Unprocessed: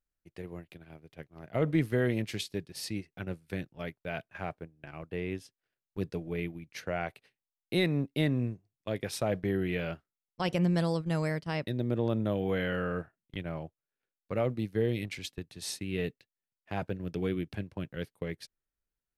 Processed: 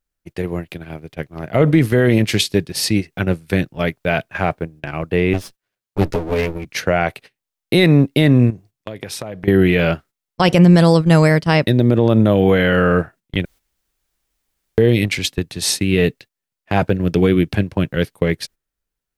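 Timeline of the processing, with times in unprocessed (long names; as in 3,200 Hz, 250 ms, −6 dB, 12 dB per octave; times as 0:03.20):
0:05.33–0:06.65: lower of the sound and its delayed copy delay 9.7 ms
0:08.50–0:09.48: downward compressor 16 to 1, threshold −43 dBFS
0:13.45–0:14.78: fill with room tone
whole clip: noise gate −57 dBFS, range −11 dB; boost into a limiter +21 dB; level −2 dB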